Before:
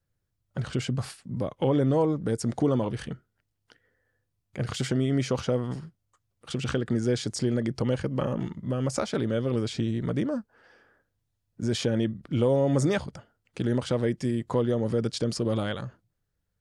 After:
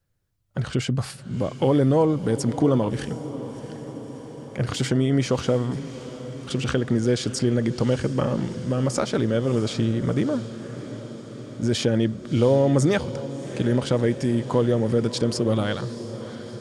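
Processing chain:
feedback delay with all-pass diffusion 676 ms, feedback 69%, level −14 dB
level +4.5 dB

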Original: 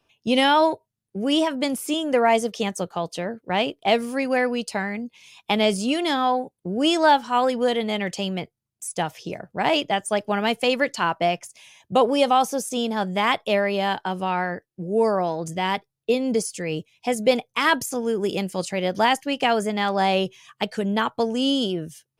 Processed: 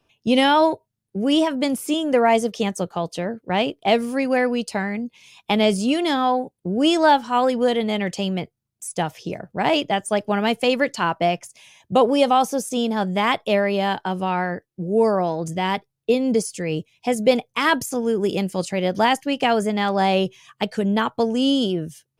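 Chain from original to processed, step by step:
low-shelf EQ 480 Hz +4.5 dB

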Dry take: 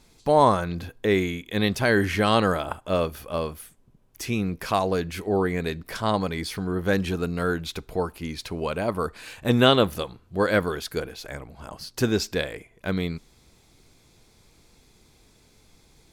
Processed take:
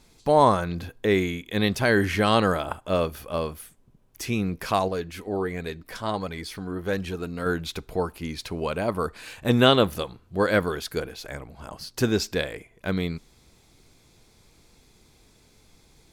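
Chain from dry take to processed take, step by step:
0:04.88–0:07.46: flanger 1.4 Hz, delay 1.2 ms, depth 3 ms, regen +62%

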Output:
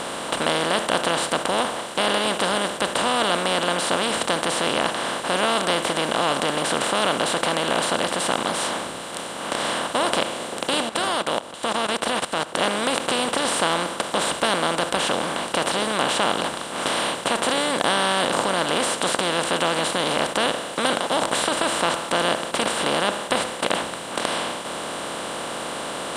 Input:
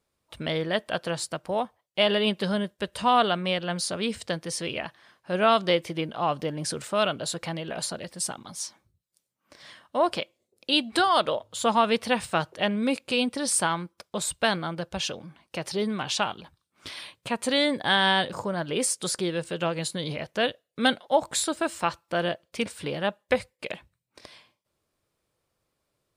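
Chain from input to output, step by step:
compressor on every frequency bin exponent 0.2
0:10.89–0:12.55: output level in coarse steps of 15 dB
level −8 dB

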